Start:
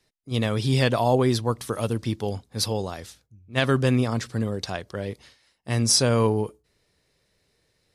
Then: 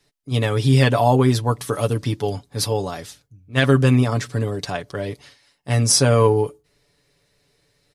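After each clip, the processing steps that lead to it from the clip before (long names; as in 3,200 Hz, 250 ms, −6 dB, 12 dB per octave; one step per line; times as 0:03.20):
dynamic equaliser 4,400 Hz, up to −4 dB, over −41 dBFS, Q 1.4
comb filter 7 ms, depth 62%
level +3.5 dB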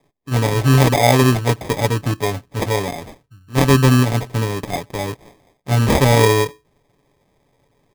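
decimation without filtering 31×
level +2.5 dB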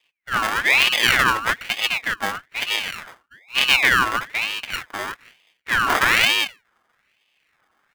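parametric band 1,500 Hz +12 dB 0.21 octaves
ring modulator whose carrier an LFO sweeps 2,000 Hz, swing 40%, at 1.1 Hz
level −2 dB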